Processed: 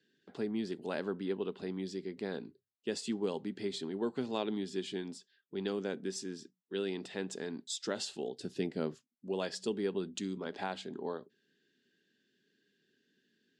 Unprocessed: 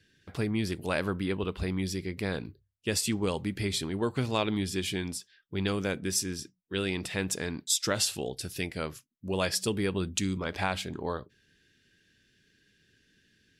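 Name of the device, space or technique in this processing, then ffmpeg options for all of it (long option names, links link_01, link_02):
television speaker: -filter_complex "[0:a]highpass=frequency=170:width=0.5412,highpass=frequency=170:width=1.3066,equalizer=frequency=240:width_type=q:width=4:gain=5,equalizer=frequency=400:width_type=q:width=4:gain=7,equalizer=frequency=790:width_type=q:width=4:gain=3,equalizer=frequency=1200:width_type=q:width=4:gain=-4,equalizer=frequency=2300:width_type=q:width=4:gain=-8,equalizer=frequency=5700:width_type=q:width=4:gain=-6,lowpass=frequency=7100:width=0.5412,lowpass=frequency=7100:width=1.3066,asettb=1/sr,asplit=3[link_01][link_02][link_03];[link_01]atrim=end=8.394[link_04];[link_02]atrim=start=8.39:end=8.95,asetpts=PTS-STARTPTS,afade=type=in:duration=0.004:curve=qsin,afade=type=out:start_time=0.556:duration=0.004:curve=qsin,lowshelf=frequency=430:gain=10[link_05];[link_03]atrim=start=8.946[link_06];[link_04][link_05]acrossfade=duration=0.004:curve1=hsin:curve2=qsin[link_07];[link_07][link_06]acrossfade=duration=0.004:curve1=qsin:curve2=hsin,volume=-8dB"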